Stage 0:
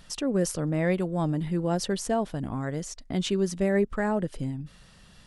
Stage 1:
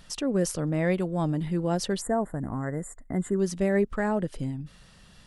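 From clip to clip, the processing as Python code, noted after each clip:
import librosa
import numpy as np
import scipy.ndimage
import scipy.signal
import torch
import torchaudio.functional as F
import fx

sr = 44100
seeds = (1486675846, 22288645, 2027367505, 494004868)

y = fx.spec_box(x, sr, start_s=2.02, length_s=1.38, low_hz=2100.0, high_hz=6900.0, gain_db=-28)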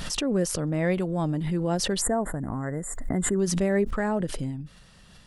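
y = fx.pre_swell(x, sr, db_per_s=36.0)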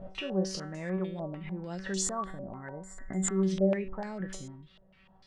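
y = fx.comb_fb(x, sr, f0_hz=190.0, decay_s=0.53, harmonics='all', damping=0.0, mix_pct=90)
y = fx.filter_held_lowpass(y, sr, hz=6.7, low_hz=610.0, high_hz=6900.0)
y = y * librosa.db_to_amplitude(3.0)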